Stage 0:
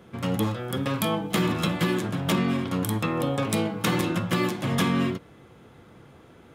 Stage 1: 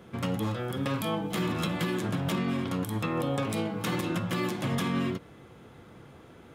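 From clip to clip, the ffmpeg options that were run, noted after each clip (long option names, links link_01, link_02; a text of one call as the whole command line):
ffmpeg -i in.wav -af "alimiter=limit=-20.5dB:level=0:latency=1:release=143" out.wav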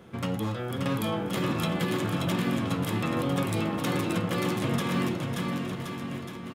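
ffmpeg -i in.wav -af "aecho=1:1:580|1073|1492|1848|2151:0.631|0.398|0.251|0.158|0.1" out.wav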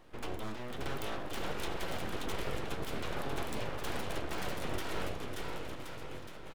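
ffmpeg -i in.wav -af "aeval=exprs='abs(val(0))':channel_layout=same,volume=-6.5dB" out.wav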